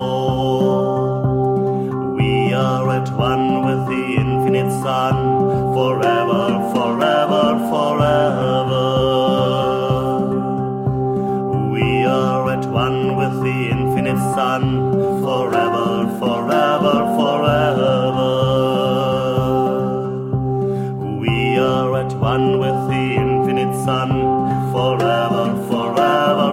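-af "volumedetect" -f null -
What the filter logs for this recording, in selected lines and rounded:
mean_volume: -16.7 dB
max_volume: -2.7 dB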